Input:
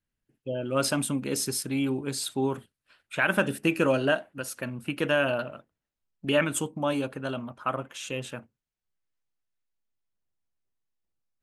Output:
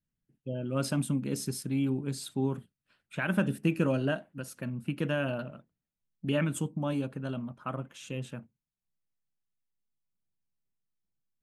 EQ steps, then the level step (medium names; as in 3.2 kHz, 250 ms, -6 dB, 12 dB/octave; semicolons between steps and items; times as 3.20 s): bass shelf 62 Hz +7 dB; peaking EQ 170 Hz +12.5 dB 1.5 oct; -9.0 dB